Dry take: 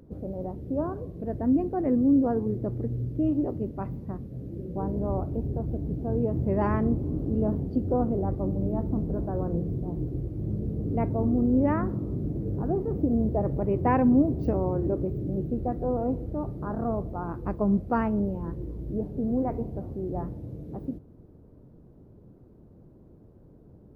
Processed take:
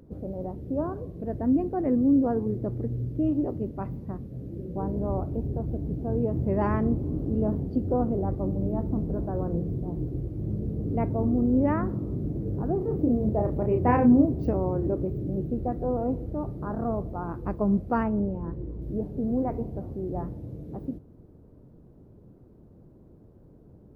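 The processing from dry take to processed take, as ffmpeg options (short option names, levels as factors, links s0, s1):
-filter_complex "[0:a]asettb=1/sr,asplit=3[s0][s1][s2];[s0]atrim=end=12.784[s3];[s1]atrim=start=12.78:end=14.25,asetpts=PTS-STARTPTS,afade=t=in:d=0.004:c=qsin,afade=t=out:st=1.466:d=0.004:c=qsin,asplit=2[s4][s5];[s5]adelay=33,volume=0.562[s6];[s4][s6]amix=inputs=2:normalize=0,atrim=end_sample=64827[s7];[s2]atrim=start=14.246[s8];[s3][s7]acrossfade=d=0.004:c1=hsin:c2=qsin[s9];[s9][s8]acrossfade=d=0.004:c1=qsin:c2=hsin,asettb=1/sr,asplit=3[s10][s11][s12];[s10]atrim=end=18.034[s13];[s11]atrim=start=18.03:end=18.82,asetpts=PTS-STARTPTS,afade=t=in:d=0.004:c=qsin,afade=t=out:st=0.786:d=0.004:c=qsin,lowpass=f=2000:p=1[s14];[s12]atrim=start=18.816[s15];[s13][s14]acrossfade=d=0.004:c1=hsin:c2=qsin[s16];[s16][s15]acrossfade=d=0.004:c1=qsin:c2=hsin"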